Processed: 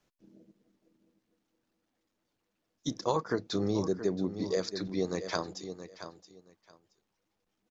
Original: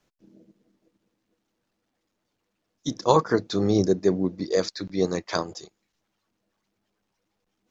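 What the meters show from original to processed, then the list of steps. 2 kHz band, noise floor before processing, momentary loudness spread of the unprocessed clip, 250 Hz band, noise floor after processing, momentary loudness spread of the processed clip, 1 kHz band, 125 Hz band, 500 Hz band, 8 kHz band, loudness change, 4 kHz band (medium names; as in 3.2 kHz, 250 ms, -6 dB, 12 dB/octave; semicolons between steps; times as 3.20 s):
-6.5 dB, -79 dBFS, 13 LU, -7.5 dB, -82 dBFS, 14 LU, -10.0 dB, -8.0 dB, -8.5 dB, no reading, -8.5 dB, -6.0 dB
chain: feedback delay 673 ms, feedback 18%, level -14 dB; compression 3:1, threshold -23 dBFS, peak gain reduction 8.5 dB; trim -4 dB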